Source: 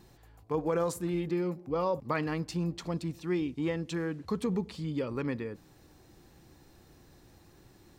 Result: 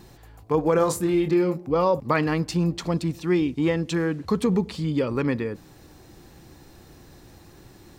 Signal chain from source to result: 0.76–1.58 s: doubling 26 ms -7 dB; trim +9 dB

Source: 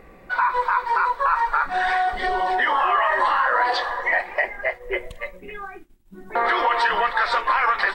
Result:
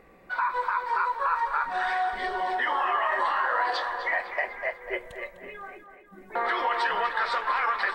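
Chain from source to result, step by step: bass shelf 91 Hz -8.5 dB; on a send: tape echo 249 ms, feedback 58%, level -9 dB, low-pass 3.8 kHz; on the sum: trim -6.5 dB

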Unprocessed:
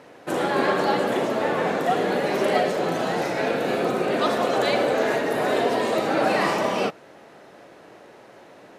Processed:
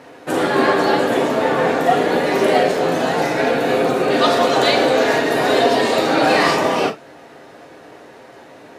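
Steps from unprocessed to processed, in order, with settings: 4.10–6.55 s: peaking EQ 4.4 kHz +5 dB 1.4 oct; gated-style reverb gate 80 ms falling, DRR 3 dB; trim +4.5 dB

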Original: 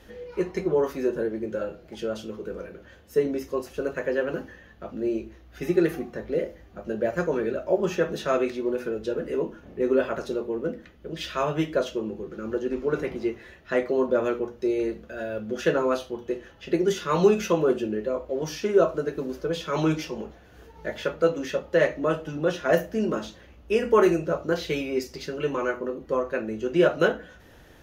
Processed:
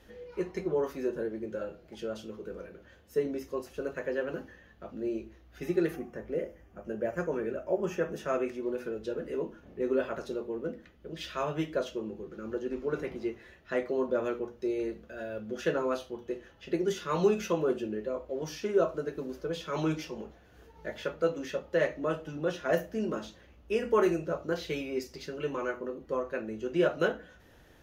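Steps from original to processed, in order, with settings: 5.96–8.63 s: peaking EQ 4 kHz -14 dB 0.4 oct; trim -6.5 dB

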